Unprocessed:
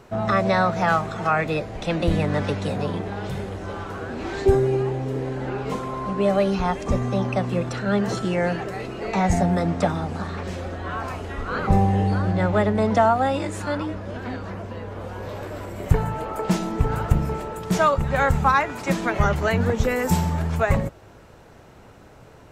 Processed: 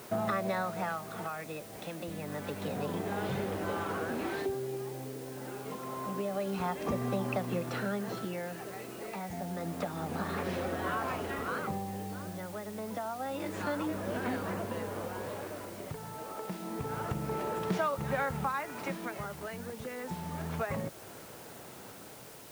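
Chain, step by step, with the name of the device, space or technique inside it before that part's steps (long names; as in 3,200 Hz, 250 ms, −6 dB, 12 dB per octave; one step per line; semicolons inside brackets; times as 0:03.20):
medium wave at night (band-pass filter 150–4,200 Hz; downward compressor, threshold −29 dBFS, peak gain reduction 15 dB; amplitude tremolo 0.28 Hz, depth 67%; steady tone 9,000 Hz −65 dBFS; white noise bed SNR 17 dB)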